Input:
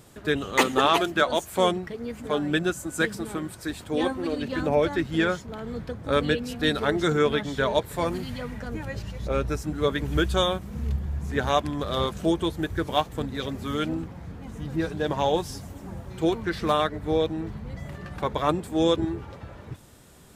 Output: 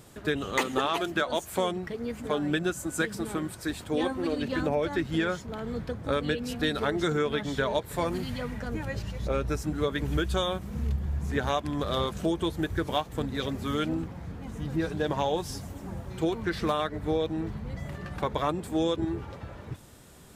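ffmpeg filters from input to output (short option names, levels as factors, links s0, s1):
-af "acompressor=threshold=0.0708:ratio=6"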